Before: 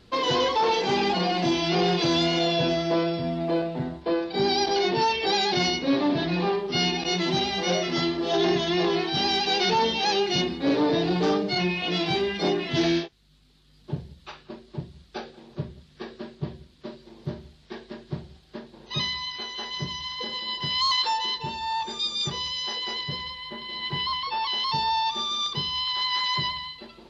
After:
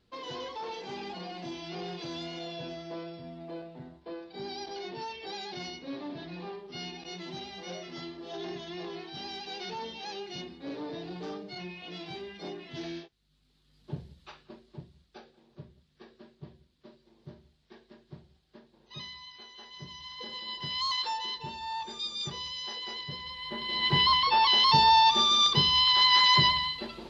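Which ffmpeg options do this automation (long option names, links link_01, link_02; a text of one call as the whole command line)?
ffmpeg -i in.wav -af "volume=14dB,afade=type=in:start_time=12.96:duration=1.07:silence=0.316228,afade=type=out:start_time=14.03:duration=1.17:silence=0.354813,afade=type=in:start_time=19.74:duration=0.67:silence=0.421697,afade=type=in:start_time=23.22:duration=0.74:silence=0.237137" out.wav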